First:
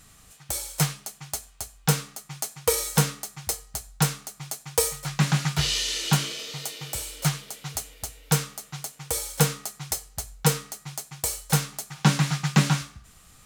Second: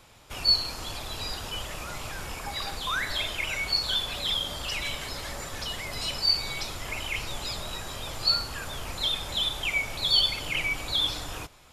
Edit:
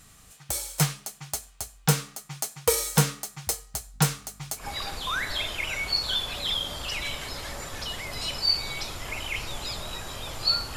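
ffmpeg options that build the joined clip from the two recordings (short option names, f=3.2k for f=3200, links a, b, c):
-filter_complex "[0:a]asettb=1/sr,asplit=3[a][b][c];[a]atrim=end=3.944[d];[b]atrim=start=3.94:end=4.67,asetpts=PTS-STARTPTS,afade=t=in:d=0.004:c=qsin,afade=t=out:st=0.726:d=0.004:c=qsin,aeval=exprs='val(0)+0.00251*(sin(2*PI*50*n/s)+sin(2*PI*2*50*n/s)/2+sin(2*PI*3*50*n/s)/3+sin(2*PI*4*50*n/s)/4+sin(2*PI*5*50*n/s)/5)':c=same[e];[c]atrim=start=4.666[f];[d][e]acrossfade=d=0.004:c1=hsin:c2=qsin[g];[g][f]acrossfade=d=0.004:c1=qsin:c2=hsin,apad=whole_dur=10.76,atrim=end=10.76,atrim=end=4.67,asetpts=PTS-STARTPTS[h];[1:a]atrim=start=2.35:end=8.56,asetpts=PTS-STARTPTS[i];[h][i]acrossfade=d=0.12:c1=tri:c2=tri"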